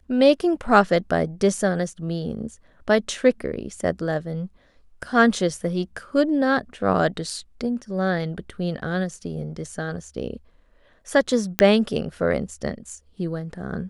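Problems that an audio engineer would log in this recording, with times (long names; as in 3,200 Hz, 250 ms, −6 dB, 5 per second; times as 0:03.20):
0:11.59: click −2 dBFS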